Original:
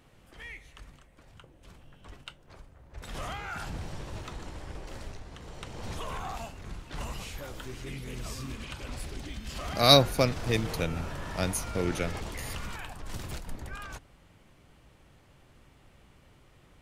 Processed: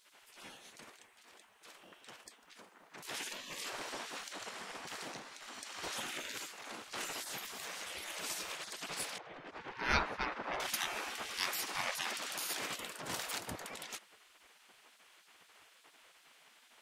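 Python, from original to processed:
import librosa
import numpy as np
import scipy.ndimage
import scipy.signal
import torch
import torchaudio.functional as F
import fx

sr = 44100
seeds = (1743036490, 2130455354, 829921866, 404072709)

y = fx.spec_gate(x, sr, threshold_db=-20, keep='weak')
y = fx.env_lowpass(y, sr, base_hz=1300.0, full_db=-13.5, at=(9.18, 10.6))
y = y * librosa.db_to_amplitude(5.5)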